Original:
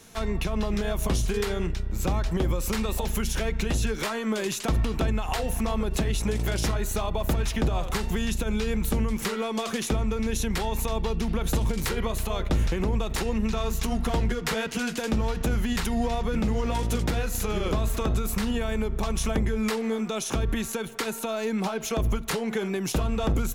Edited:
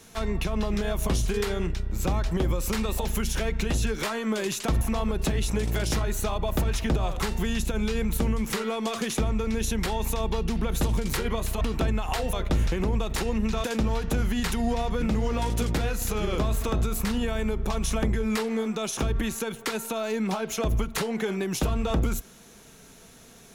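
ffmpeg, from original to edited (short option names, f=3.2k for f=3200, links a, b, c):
-filter_complex "[0:a]asplit=5[a][b][c][d][e];[a]atrim=end=4.812[f];[b]atrim=start=5.528:end=12.332[g];[c]atrim=start=4.808:end=5.532[h];[d]atrim=start=12.328:end=13.642[i];[e]atrim=start=14.968[j];[f][g]acrossfade=d=0.004:c1=hsin:c2=hsin[k];[k][h]acrossfade=d=0.004:c1=hsin:c2=hsin[l];[l][i]acrossfade=d=0.004:c1=hsin:c2=hsin[m];[m][j]acrossfade=d=0.004:c1=hsin:c2=hsin"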